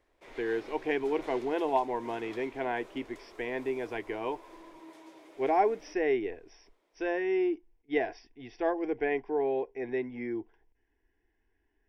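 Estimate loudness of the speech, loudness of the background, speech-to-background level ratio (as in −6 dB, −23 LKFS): −32.5 LKFS, −51.5 LKFS, 19.0 dB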